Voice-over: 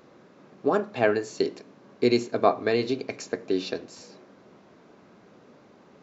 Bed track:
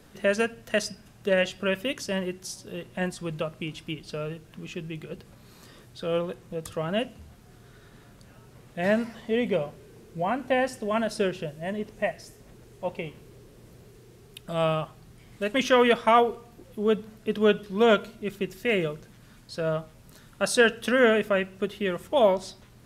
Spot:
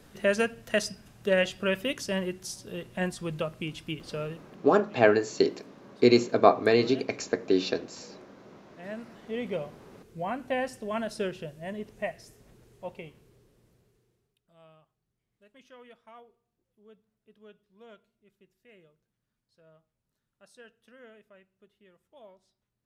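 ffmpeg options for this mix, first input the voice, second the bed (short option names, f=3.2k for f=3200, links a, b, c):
-filter_complex "[0:a]adelay=4000,volume=2dB[a];[1:a]volume=10.5dB,afade=t=out:st=4.21:d=0.43:silence=0.158489,afade=t=in:st=8.87:d=0.8:silence=0.266073,afade=t=out:st=12.35:d=2.02:silence=0.0473151[b];[a][b]amix=inputs=2:normalize=0"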